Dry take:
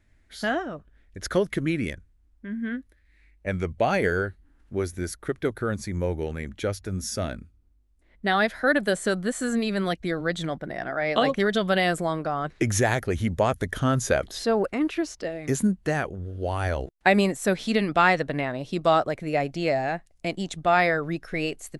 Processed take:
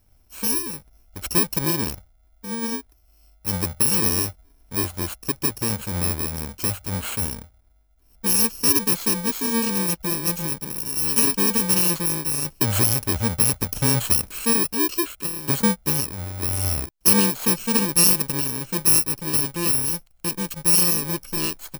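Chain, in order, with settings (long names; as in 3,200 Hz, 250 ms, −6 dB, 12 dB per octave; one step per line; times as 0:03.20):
samples in bit-reversed order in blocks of 64 samples
level +3 dB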